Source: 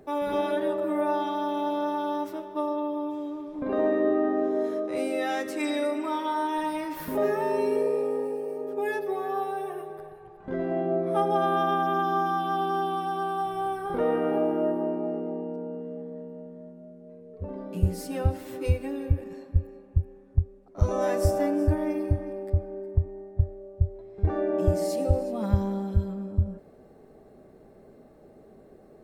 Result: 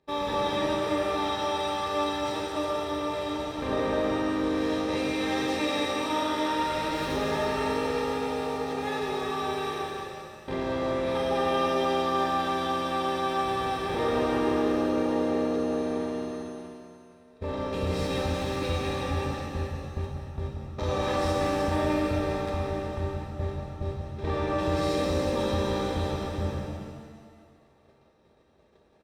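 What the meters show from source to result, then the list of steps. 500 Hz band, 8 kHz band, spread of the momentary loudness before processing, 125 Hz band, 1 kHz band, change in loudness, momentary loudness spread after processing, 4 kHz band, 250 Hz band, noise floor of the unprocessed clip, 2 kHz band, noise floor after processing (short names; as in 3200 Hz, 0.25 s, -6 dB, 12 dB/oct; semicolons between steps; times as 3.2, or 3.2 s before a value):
-0.5 dB, +4.0 dB, 11 LU, -4.5 dB, 0.0 dB, -0.5 dB, 9 LU, +10.5 dB, +0.5 dB, -53 dBFS, +4.0 dB, -59 dBFS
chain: per-bin compression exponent 0.4; high shelf 7100 Hz -11 dB; soft clip -10.5 dBFS, distortion -22 dB; bell 4000 Hz +12.5 dB 1.3 oct; notch comb 720 Hz; gate -26 dBFS, range -35 dB; echo 0.187 s -9.5 dB; shimmer reverb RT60 1.7 s, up +7 st, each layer -8 dB, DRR 0 dB; gain -8.5 dB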